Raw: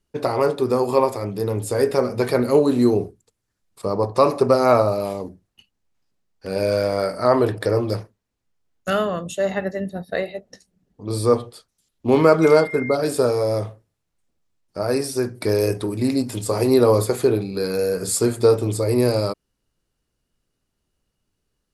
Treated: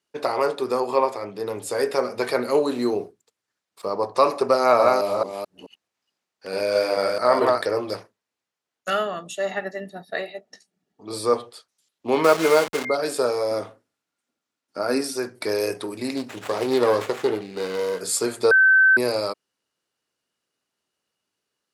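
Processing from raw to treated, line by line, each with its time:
0.8–1.47 high shelf 6300 Hz -10 dB
2.73–3.97 decimation joined by straight lines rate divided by 2×
4.58–7.64 reverse delay 0.217 s, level -2 dB
8.89–11.13 notch comb 520 Hz
12.24–12.85 level-crossing sampler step -21 dBFS
13.51–15.16 small resonant body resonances 260/1400 Hz, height 10 dB
16.16–18.01 running maximum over 9 samples
18.51–18.97 bleep 1540 Hz -12.5 dBFS
whole clip: weighting filter A

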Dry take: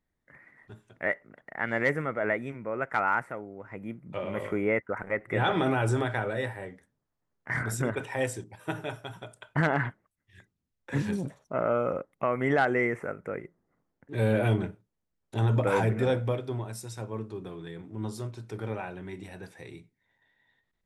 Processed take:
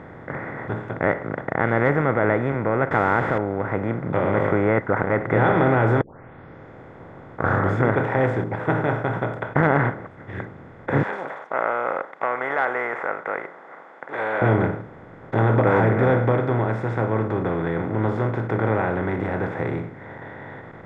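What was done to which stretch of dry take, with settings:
2.91–3.38 delta modulation 64 kbps, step -33 dBFS
6.01 tape start 1.90 s
11.03–14.42 HPF 830 Hz 24 dB/oct
whole clip: per-bin compression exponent 0.4; LPF 1500 Hz 12 dB/oct; gain +3 dB

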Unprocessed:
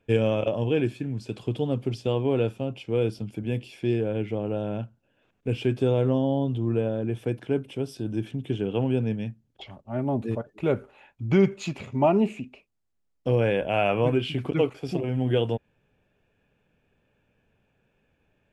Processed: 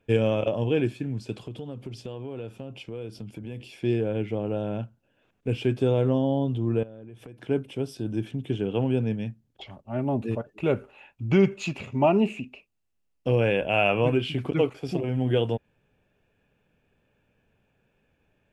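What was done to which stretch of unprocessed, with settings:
1.44–3.6 compressor 4:1, threshold -34 dBFS
6.83–7.4 compressor 10:1, threshold -40 dBFS
9.84–14.17 bell 2700 Hz +8.5 dB 0.2 oct

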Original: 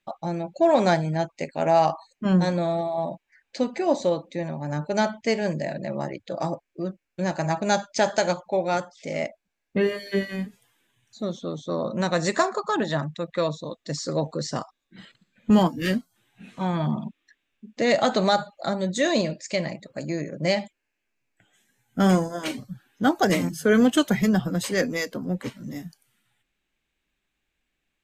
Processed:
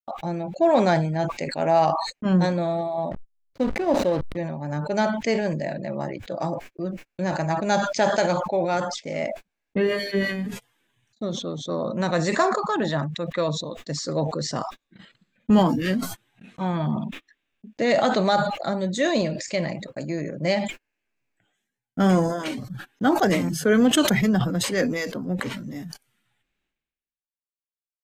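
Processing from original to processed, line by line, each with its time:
3.11–4.37 backlash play -29 dBFS
whole clip: gate -43 dBFS, range -40 dB; high shelf 5000 Hz -6 dB; sustainer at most 53 dB/s

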